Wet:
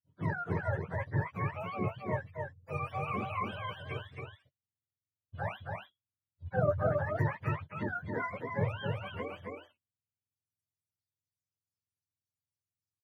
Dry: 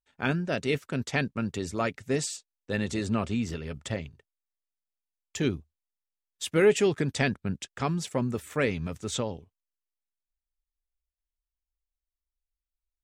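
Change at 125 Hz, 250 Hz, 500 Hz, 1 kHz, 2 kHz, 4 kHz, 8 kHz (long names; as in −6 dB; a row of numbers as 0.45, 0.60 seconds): −2.0 dB, −11.0 dB, −7.5 dB, +0.5 dB, −6.0 dB, −14.0 dB, below −30 dB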